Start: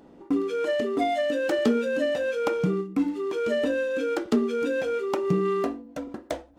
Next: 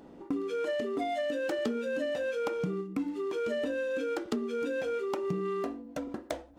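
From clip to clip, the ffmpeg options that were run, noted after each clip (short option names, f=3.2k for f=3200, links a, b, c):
-af "acompressor=threshold=-32dB:ratio=3"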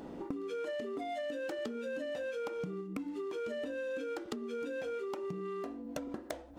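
-af "acompressor=threshold=-42dB:ratio=10,volume=5.5dB"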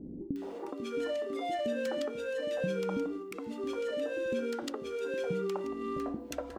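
-filter_complex "[0:a]acrossover=split=350|1600[a][b][c];[c]adelay=360[d];[b]adelay=420[e];[a][e][d]amix=inputs=3:normalize=0,volume=6dB"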